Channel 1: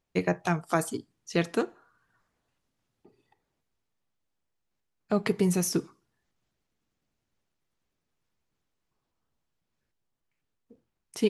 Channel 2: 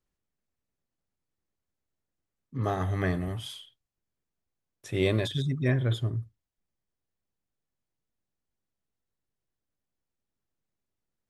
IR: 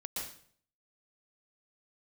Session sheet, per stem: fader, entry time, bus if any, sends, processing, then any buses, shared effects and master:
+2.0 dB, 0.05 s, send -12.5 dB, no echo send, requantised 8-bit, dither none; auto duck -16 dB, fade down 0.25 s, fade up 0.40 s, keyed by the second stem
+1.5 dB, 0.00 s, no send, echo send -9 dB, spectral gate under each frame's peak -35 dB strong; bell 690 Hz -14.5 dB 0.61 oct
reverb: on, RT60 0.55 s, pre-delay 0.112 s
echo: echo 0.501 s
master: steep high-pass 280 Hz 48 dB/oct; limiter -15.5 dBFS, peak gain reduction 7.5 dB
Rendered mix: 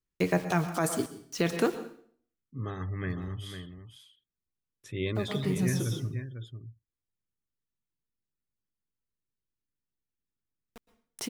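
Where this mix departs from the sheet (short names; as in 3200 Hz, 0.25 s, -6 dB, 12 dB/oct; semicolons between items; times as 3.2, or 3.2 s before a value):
stem 2 +1.5 dB -> -5.0 dB; master: missing steep high-pass 280 Hz 48 dB/oct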